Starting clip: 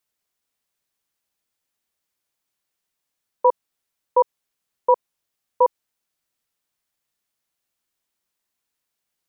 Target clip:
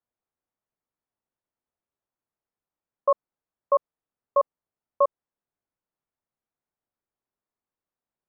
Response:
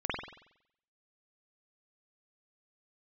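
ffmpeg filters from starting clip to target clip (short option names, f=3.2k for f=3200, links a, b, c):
-af "lowpass=1k,asetrate=49392,aresample=44100,volume=-2.5dB"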